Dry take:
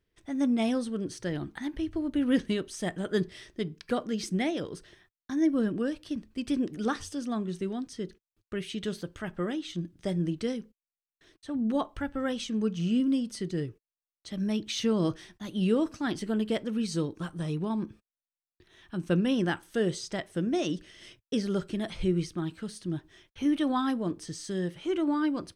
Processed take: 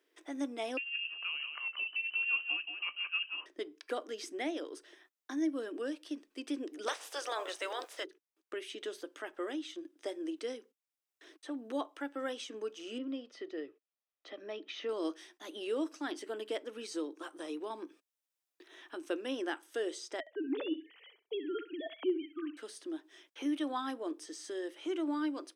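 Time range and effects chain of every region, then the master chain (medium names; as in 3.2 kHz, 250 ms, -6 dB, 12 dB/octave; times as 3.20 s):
0.77–3.46 s: dynamic bell 1.5 kHz, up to -7 dB, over -49 dBFS, Q 0.88 + delay 177 ms -8 dB + frequency inversion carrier 3 kHz
6.86–8.03 s: spectral peaks clipped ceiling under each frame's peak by 27 dB + added noise pink -60 dBFS + resonant low shelf 350 Hz -12 dB, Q 1.5
12.98–14.89 s: distance through air 260 m + comb 1.6 ms, depth 33%
20.20–22.57 s: formants replaced by sine waves + feedback delay 66 ms, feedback 18%, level -13 dB
whole clip: elliptic high-pass 290 Hz, stop band 40 dB; band-stop 4.3 kHz, Q 14; three bands compressed up and down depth 40%; trim -5 dB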